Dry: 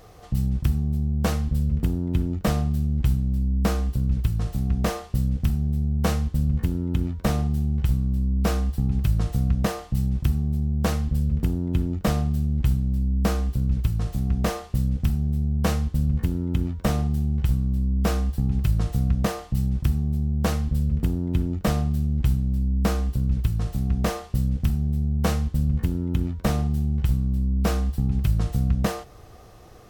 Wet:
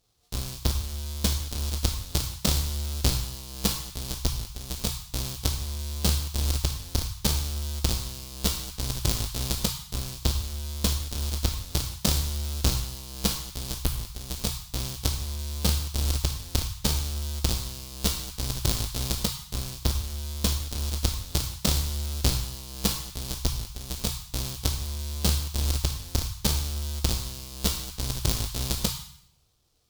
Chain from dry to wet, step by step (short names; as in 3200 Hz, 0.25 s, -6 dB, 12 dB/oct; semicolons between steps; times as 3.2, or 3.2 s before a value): half-waves squared off; added harmonics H 3 -9 dB, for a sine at -10.5 dBFS; resonant high shelf 2800 Hz +12.5 dB, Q 1.5; on a send: elliptic band-stop 140–910 Hz + reverb RT60 0.70 s, pre-delay 14 ms, DRR 2.5 dB; on the sum: gain -7.5 dB